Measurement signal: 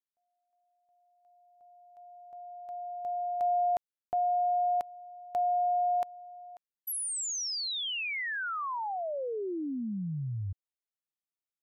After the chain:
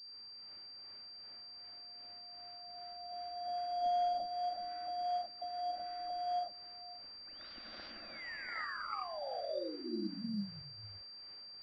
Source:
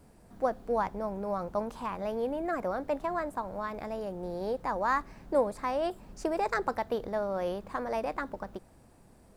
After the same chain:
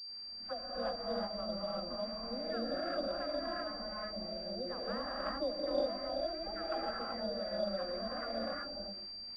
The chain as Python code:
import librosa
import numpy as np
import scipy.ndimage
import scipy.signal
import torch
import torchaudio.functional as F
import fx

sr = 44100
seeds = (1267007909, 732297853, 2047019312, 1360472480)

y = fx.cvsd(x, sr, bps=32000)
y = fx.dispersion(y, sr, late='lows', ms=95.0, hz=1100.0)
y = fx.quant_dither(y, sr, seeds[0], bits=10, dither='triangular')
y = fx.harmonic_tremolo(y, sr, hz=2.6, depth_pct=70, crossover_hz=740.0)
y = fx.fixed_phaser(y, sr, hz=620.0, stages=8)
y = fx.rev_gated(y, sr, seeds[1], gate_ms=410, shape='rising', drr_db=-5.5)
y = fx.pwm(y, sr, carrier_hz=4700.0)
y = y * 10.0 ** (-6.5 / 20.0)